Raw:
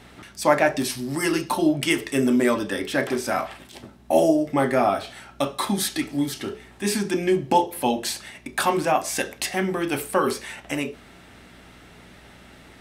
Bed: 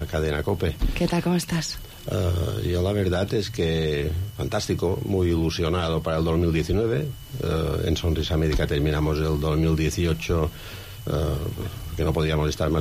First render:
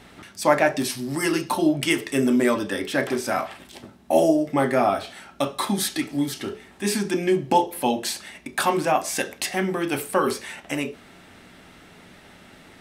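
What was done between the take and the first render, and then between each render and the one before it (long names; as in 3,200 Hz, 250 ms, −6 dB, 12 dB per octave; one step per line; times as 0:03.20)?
hum removal 60 Hz, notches 2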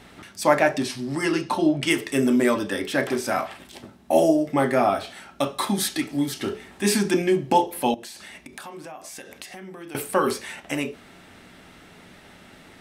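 0:00.78–0:01.87: high-frequency loss of the air 57 metres
0:06.42–0:07.22: clip gain +3 dB
0:07.94–0:09.95: downward compressor, threshold −37 dBFS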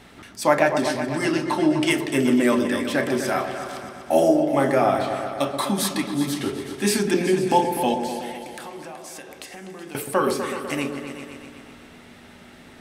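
echo whose low-pass opens from repeat to repeat 125 ms, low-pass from 750 Hz, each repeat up 2 octaves, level −6 dB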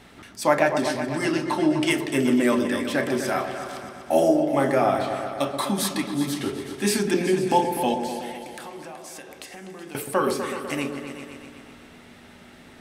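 level −1.5 dB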